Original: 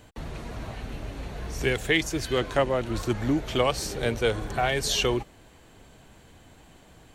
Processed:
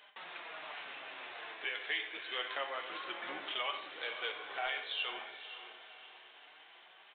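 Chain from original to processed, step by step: octave divider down 2 oct, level +2 dB; high-pass 890 Hz 12 dB/octave; tilt EQ +2 dB/octave; compression 2:1, threshold -38 dBFS, peak gain reduction 12 dB; flange 0.28 Hz, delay 4.8 ms, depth 4.9 ms, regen +38%; saturation -27 dBFS, distortion -21 dB; spectral gate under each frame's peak -30 dB strong; echo that smears into a reverb 526 ms, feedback 42%, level -11 dB; on a send at -5 dB: reverberation, pre-delay 3 ms; on the sum: resampled via 8 kHz; trim +2 dB

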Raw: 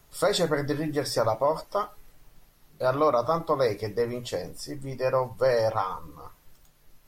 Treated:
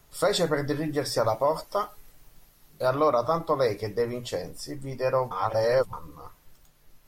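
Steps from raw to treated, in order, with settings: 1.26–2.89 s: treble shelf 4.7 kHz +5.5 dB; 5.31–5.93 s: reverse

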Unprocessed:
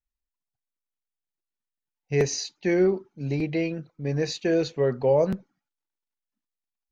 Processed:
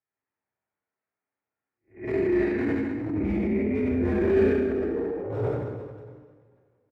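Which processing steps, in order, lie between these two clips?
spectral blur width 240 ms; mistuned SSB -76 Hz 210–2200 Hz; compressor with a negative ratio -34 dBFS, ratio -0.5; hard clipper -26.5 dBFS, distortion -20 dB; on a send: reverse bouncing-ball echo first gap 70 ms, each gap 1.3×, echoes 5; on the sum: two-slope reverb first 0.87 s, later 2.6 s, DRR -7 dB; transient shaper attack -10 dB, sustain +4 dB; 4.34–4.96 s: Butterworth band-stop 1 kHz, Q 5.3

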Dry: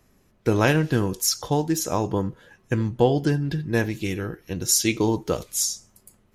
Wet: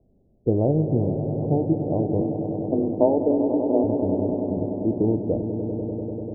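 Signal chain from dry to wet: steep low-pass 710 Hz 48 dB/octave; 2.21–3.84 s: frequency shift +140 Hz; on a send: echo with a slow build-up 98 ms, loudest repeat 5, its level -11 dB

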